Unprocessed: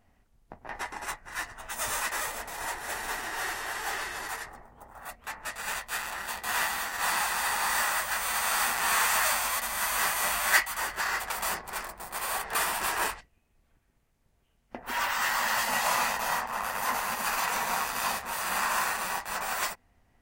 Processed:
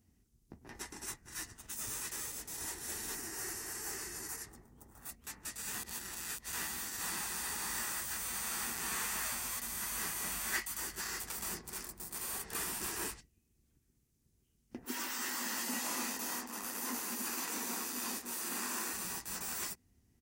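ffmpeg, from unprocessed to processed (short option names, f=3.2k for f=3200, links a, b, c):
-filter_complex "[0:a]asettb=1/sr,asplit=3[a][b][c];[a]atrim=end=1.564[d];[b]atrim=start=1.56:end=2.5,asetpts=PTS-STARTPTS,afade=t=in:d=0.004:c=qsin,afade=t=out:st=0.936:d=0.004:c=qsin,aeval=exprs='if(lt(val(0),0),0.447*val(0),val(0))':c=same[e];[c]atrim=start=2.496[f];[d][e]acrossfade=d=0.004:c1=hsin:c2=qsin[g];[g][f]acrossfade=d=0.004:c1=qsin:c2=hsin,asettb=1/sr,asplit=3[h][i][j];[h]atrim=end=3.154[k];[i]atrim=start=3.15:end=4.44,asetpts=PTS-STARTPTS,afade=t=in:d=0.004:c=qsin,afade=t=out:st=1.286:d=0.004:c=qsin,equalizer=f=3.5k:w=2.6:g=-11.5[l];[j]atrim=start=4.436[m];[k][l]acrossfade=d=0.004:c1=hsin:c2=qsin[n];[n][m]acrossfade=d=0.004:c1=qsin:c2=hsin,asettb=1/sr,asplit=3[o][p][q];[o]atrim=end=14.844[r];[p]atrim=start=14.84:end=18.93,asetpts=PTS-STARTPTS,afade=t=in:d=0.004:c=qsin,afade=t=out:st=4.086:d=0.004:c=qsin,lowshelf=f=190:t=q:w=3:g=-11[s];[q]atrim=start=18.926[t];[r][s]acrossfade=d=0.004:c1=hsin:c2=qsin[u];[u][t]acrossfade=d=0.004:c1=qsin:c2=hsin,asplit=3[v][w][x];[v]atrim=end=5.742[y];[w]atrim=start=5.738:end=6.532,asetpts=PTS-STARTPTS,areverse[z];[x]atrim=start=6.528[aa];[y][z]acrossfade=d=0.004:c1=hsin:c2=hsin[ab];[ab][aa]acrossfade=d=0.004:c1=hsin:c2=hsin,highpass=52,acrossover=split=2900[ac][ad];[ad]acompressor=threshold=-37dB:ratio=4:attack=1:release=60[ae];[ac][ae]amix=inputs=2:normalize=0,firequalizer=gain_entry='entry(350,0);entry(600,-17);entry(5800,3)':delay=0.05:min_phase=1,volume=-1dB"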